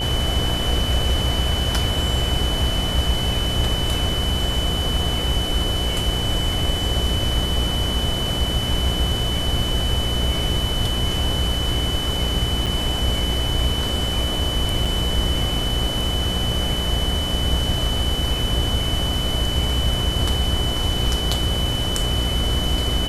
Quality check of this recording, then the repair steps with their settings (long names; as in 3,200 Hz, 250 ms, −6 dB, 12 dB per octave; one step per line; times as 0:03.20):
mains buzz 60 Hz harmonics 14 −26 dBFS
whistle 3,000 Hz −25 dBFS
0:12.66–0:12.67: drop-out 6.6 ms
0:14.85–0:14.86: drop-out 5.2 ms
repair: hum removal 60 Hz, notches 14
notch filter 3,000 Hz, Q 30
repair the gap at 0:12.66, 6.6 ms
repair the gap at 0:14.85, 5.2 ms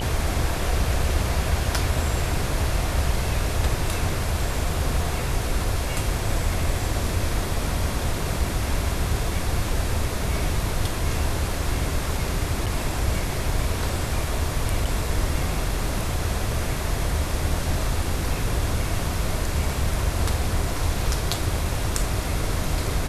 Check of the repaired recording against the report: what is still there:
none of them is left